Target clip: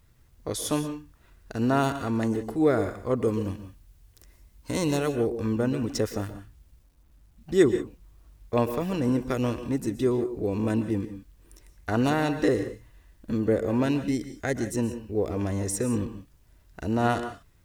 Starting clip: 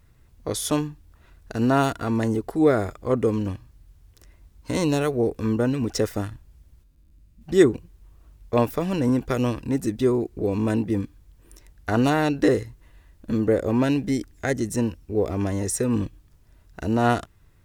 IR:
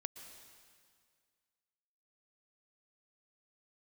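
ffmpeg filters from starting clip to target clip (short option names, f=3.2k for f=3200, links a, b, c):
-filter_complex "[0:a]asettb=1/sr,asplit=3[a][b][c];[a]atrim=end=3.234[d];[b]atrim=start=3.23:end=4.97,asetpts=PTS-STARTPTS,afade=t=in:d=0.004:c=qsin,afade=t=out:st=1.736:d=0.004:c=qsin,highshelf=f=7.8k:g=7[e];[c]atrim=start=4.966[f];[d][e]acrossfade=d=0.004:c1=hsin:c2=qsin[g];[g][f]acrossfade=d=0.004:c1=qsin:c2=hsin,acrusher=bits=10:mix=0:aa=0.000001[h];[1:a]atrim=start_sample=2205,afade=t=out:st=0.24:d=0.01,atrim=end_sample=11025[i];[h][i]afir=irnorm=-1:irlink=0"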